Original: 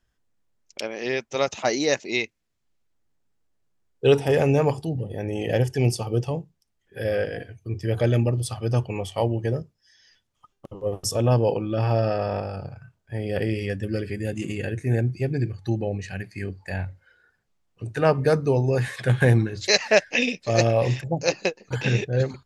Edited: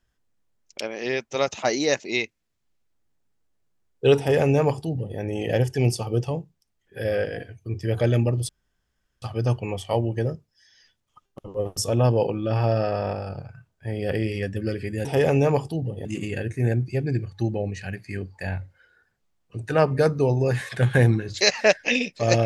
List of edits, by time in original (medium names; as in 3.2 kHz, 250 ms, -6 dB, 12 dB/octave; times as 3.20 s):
4.18–5.18 s: copy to 14.32 s
8.49 s: insert room tone 0.73 s